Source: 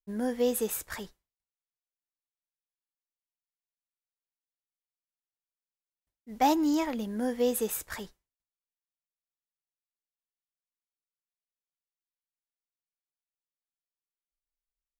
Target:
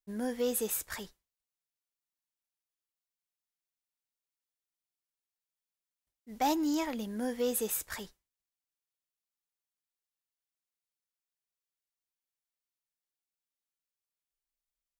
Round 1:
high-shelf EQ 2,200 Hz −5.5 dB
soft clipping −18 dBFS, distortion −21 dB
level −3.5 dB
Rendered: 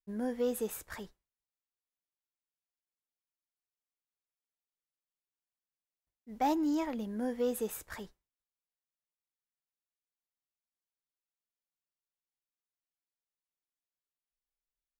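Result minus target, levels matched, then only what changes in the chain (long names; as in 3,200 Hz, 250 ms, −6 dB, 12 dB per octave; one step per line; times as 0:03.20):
4,000 Hz band −6.5 dB
change: high-shelf EQ 2,200 Hz +5 dB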